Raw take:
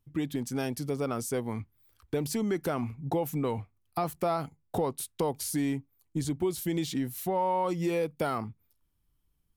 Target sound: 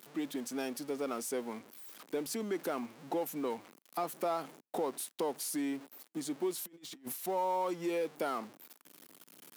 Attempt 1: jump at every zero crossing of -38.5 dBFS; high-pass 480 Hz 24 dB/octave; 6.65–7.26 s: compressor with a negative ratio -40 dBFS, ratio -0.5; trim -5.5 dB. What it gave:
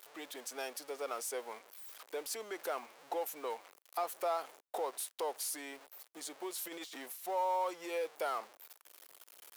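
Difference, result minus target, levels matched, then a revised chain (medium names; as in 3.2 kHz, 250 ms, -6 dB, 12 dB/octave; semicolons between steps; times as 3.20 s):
250 Hz band -11.0 dB
jump at every zero crossing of -38.5 dBFS; high-pass 240 Hz 24 dB/octave; 6.65–7.26 s: compressor with a negative ratio -40 dBFS, ratio -0.5; trim -5.5 dB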